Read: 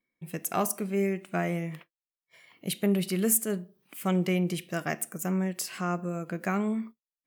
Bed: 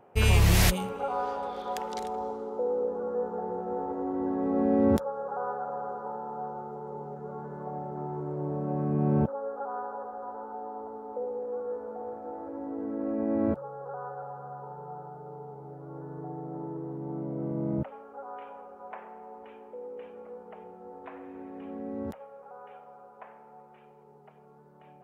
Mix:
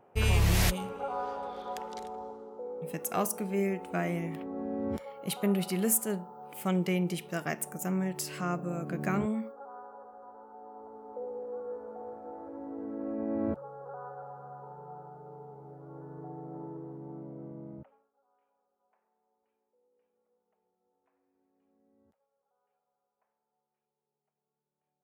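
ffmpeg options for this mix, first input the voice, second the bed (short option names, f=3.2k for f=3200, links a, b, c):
-filter_complex "[0:a]adelay=2600,volume=-2.5dB[a];[1:a]volume=2.5dB,afade=t=out:st=1.61:d=0.98:silence=0.446684,afade=t=in:st=10.53:d=0.8:silence=0.473151,afade=t=out:st=16.63:d=1.48:silence=0.0354813[b];[a][b]amix=inputs=2:normalize=0"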